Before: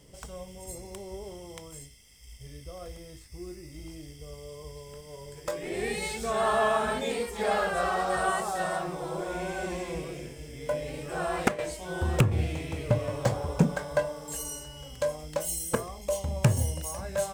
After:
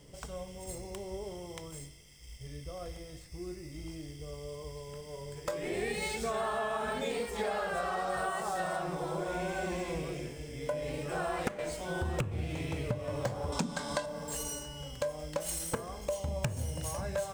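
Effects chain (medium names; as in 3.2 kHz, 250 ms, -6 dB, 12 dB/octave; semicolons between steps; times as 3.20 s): median filter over 3 samples; 13.52–14.06 s: graphic EQ 125/250/500/1000/4000/8000 Hz -10/+10/-5/+6/+12/+10 dB; simulated room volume 1800 m³, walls mixed, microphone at 0.34 m; compression 8:1, threshold -30 dBFS, peak gain reduction 15 dB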